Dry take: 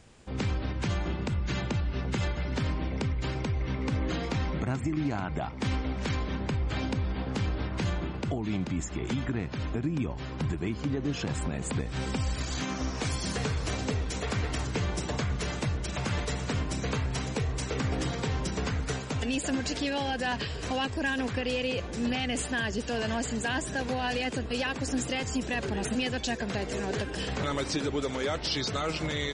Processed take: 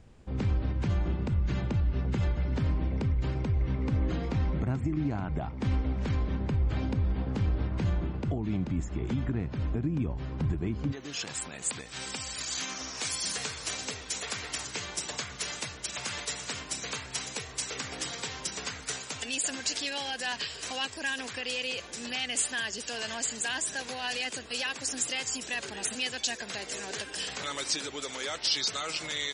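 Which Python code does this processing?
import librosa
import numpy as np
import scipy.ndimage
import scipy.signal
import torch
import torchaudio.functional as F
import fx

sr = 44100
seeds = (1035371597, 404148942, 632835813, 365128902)

y = fx.tilt_eq(x, sr, slope=fx.steps((0.0, -2.0), (10.91, 4.0)))
y = y * 10.0 ** (-4.5 / 20.0)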